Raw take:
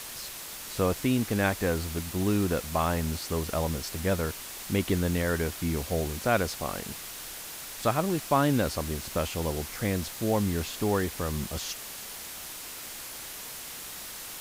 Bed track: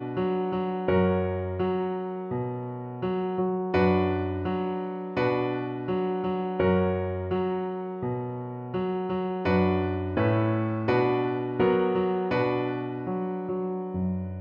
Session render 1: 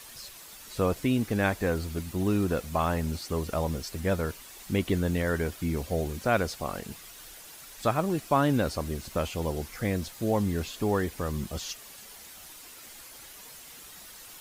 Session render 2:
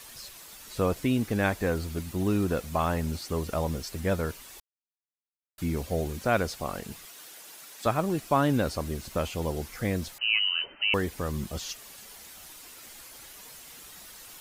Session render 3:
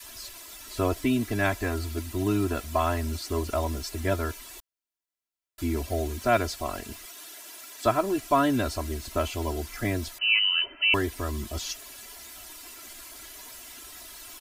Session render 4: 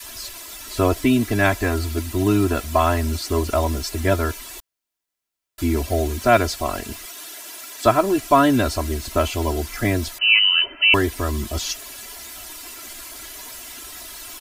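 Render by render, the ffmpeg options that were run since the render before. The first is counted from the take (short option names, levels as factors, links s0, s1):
-af "afftdn=nr=9:nf=-41"
-filter_complex "[0:a]asettb=1/sr,asplit=3[s0][s1][s2];[s0]atrim=end=7.054[s3];[s1]atrim=start=7.05:end=7.86,asetpts=PTS-STARTPTS,afade=t=in:d=0.004:c=qsin,afade=t=out:st=0.806:d=0.004:c=qsin,highpass=220[s4];[s2]atrim=start=7.856[s5];[s3][s4]acrossfade=d=0.004:c1=hsin:c2=qsin[s6];[s6][s5]acrossfade=d=0.004:c1=qsin:c2=hsin,asettb=1/sr,asplit=3[s7][s8][s9];[s7]atrim=end=10.184[s10];[s8]atrim=start=10.18:end=10.94,asetpts=PTS-STARTPTS,afade=t=in:d=0.004:c=qsin,afade=t=out:st=0.756:d=0.004:c=qsin,lowpass=f=2600:t=q:w=0.5098,lowpass=f=2600:t=q:w=0.6013,lowpass=f=2600:t=q:w=0.9,lowpass=f=2600:t=q:w=2.563,afreqshift=-3100[s11];[s9]atrim=start=10.936[s12];[s10][s11]acrossfade=d=0.004:c1=hsin:c2=qsin[s13];[s13][s12]acrossfade=d=0.004:c1=qsin:c2=hsin,asplit=3[s14][s15][s16];[s14]atrim=end=4.6,asetpts=PTS-STARTPTS,afade=t=out:st=4.596:d=0.004:c=hsin[s17];[s15]atrim=start=4.6:end=5.58,asetpts=PTS-STARTPTS,volume=0[s18];[s16]atrim=start=5.58,asetpts=PTS-STARTPTS,afade=t=in:d=0.004:c=hsin[s19];[s17][s18][s19]concat=n=3:v=0:a=1"
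-af "aecho=1:1:3:0.96,adynamicequalizer=threshold=0.0141:dfrequency=370:dqfactor=0.73:tfrequency=370:tqfactor=0.73:attack=5:release=100:ratio=0.375:range=2:mode=cutabove:tftype=bell"
-af "volume=2.37"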